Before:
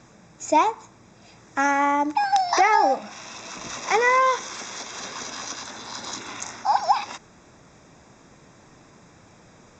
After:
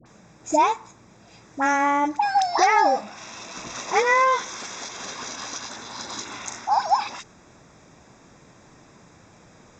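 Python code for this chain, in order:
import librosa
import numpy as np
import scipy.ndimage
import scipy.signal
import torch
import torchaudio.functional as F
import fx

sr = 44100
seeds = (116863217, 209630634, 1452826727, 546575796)

y = fx.dispersion(x, sr, late='highs', ms=59.0, hz=1000.0)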